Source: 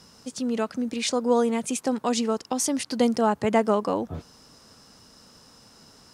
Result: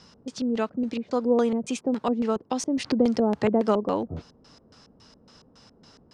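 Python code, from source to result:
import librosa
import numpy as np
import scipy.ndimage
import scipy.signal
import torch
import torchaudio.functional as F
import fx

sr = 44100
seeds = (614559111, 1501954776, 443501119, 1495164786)

y = fx.filter_lfo_lowpass(x, sr, shape='square', hz=3.6, low_hz=470.0, high_hz=4600.0, q=1.0)
y = fx.band_squash(y, sr, depth_pct=70, at=(2.84, 3.87))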